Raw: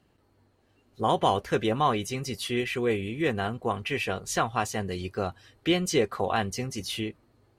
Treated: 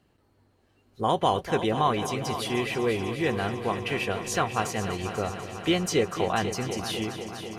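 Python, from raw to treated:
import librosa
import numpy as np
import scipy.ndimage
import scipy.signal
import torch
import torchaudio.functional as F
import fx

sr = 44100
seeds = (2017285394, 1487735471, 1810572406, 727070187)

y = fx.echo_heads(x, sr, ms=246, heads='first and second', feedback_pct=71, wet_db=-13.5)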